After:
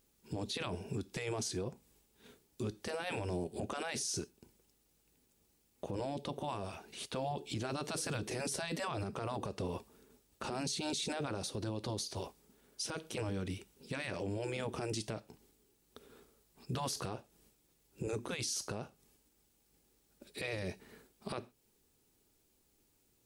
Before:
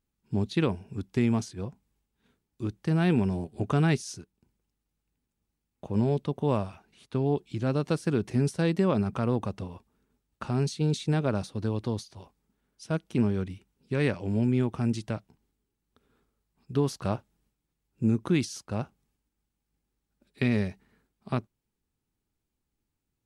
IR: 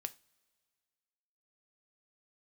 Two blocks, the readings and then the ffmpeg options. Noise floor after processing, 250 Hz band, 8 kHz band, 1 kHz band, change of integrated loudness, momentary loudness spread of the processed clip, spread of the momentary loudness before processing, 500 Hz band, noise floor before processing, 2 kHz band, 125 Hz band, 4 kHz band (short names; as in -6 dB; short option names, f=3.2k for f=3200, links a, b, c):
-74 dBFS, -14.5 dB, +3.5 dB, -5.0 dB, -11.0 dB, 9 LU, 11 LU, -9.0 dB, -83 dBFS, -5.5 dB, -14.5 dB, +0.5 dB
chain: -filter_complex "[0:a]equalizer=f=460:t=o:w=1.6:g=10.5,asplit=2[a][b];[1:a]atrim=start_sample=2205,afade=t=out:st=0.19:d=0.01,atrim=end_sample=8820,highshelf=f=2.3k:g=9.5[c];[b][c]afir=irnorm=-1:irlink=0,volume=-5dB[d];[a][d]amix=inputs=2:normalize=0,afftfilt=real='re*lt(hypot(re,im),0.631)':imag='im*lt(hypot(re,im),0.631)':win_size=1024:overlap=0.75,acompressor=threshold=-32dB:ratio=4,highshelf=f=2.2k:g=9.5,alimiter=level_in=5dB:limit=-24dB:level=0:latency=1:release=24,volume=-5dB"